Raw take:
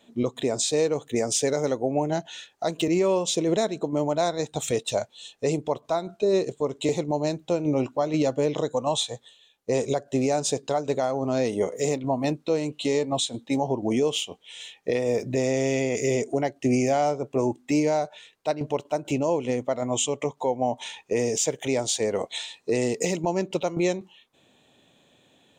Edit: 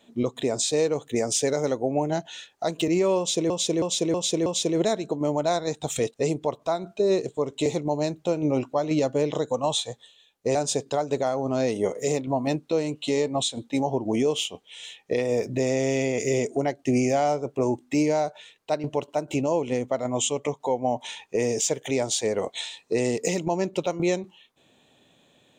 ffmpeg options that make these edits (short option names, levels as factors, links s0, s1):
-filter_complex "[0:a]asplit=7[s0][s1][s2][s3][s4][s5][s6];[s0]atrim=end=3.502[s7];[s1]atrim=start=3.178:end=3.502[s8];[s2]atrim=start=3.178:end=3.502[s9];[s3]atrim=start=3.178:end=3.502[s10];[s4]atrim=start=3.178:end=4.862[s11];[s5]atrim=start=5.368:end=9.782[s12];[s6]atrim=start=10.318[s13];[s7][s8]acrossfade=d=0.004:c1=hsin:c2=hsin[s14];[s14][s9]acrossfade=d=0.004:c1=hsin:c2=hsin[s15];[s15][s10]acrossfade=d=0.004:c1=hsin:c2=hsin[s16];[s16][s11]acrossfade=d=0.004:c1=hsin:c2=hsin[s17];[s17][s12]acrossfade=d=0.004:c1=hsin:c2=hsin[s18];[s18][s13]acrossfade=d=0.004:c1=hsin:c2=hsin"